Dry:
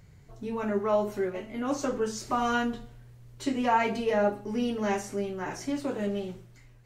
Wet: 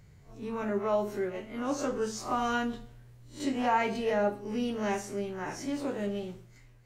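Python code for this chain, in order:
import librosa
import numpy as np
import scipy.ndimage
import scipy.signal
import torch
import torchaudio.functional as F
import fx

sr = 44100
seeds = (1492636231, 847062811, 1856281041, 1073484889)

y = fx.spec_swells(x, sr, rise_s=0.32)
y = y * librosa.db_to_amplitude(-3.0)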